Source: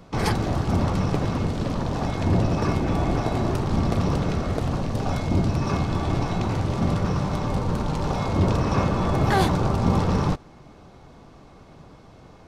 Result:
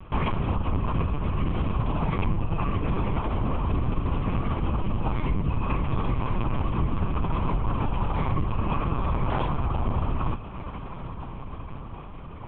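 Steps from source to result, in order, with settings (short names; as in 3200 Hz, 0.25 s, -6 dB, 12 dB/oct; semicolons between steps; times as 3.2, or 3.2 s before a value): compressor 20:1, threshold -26 dBFS, peak gain reduction 12.5 dB; fixed phaser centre 2600 Hz, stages 8; diffused feedback echo 1.477 s, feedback 54%, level -13 dB; LPC vocoder at 8 kHz pitch kept; gain +7 dB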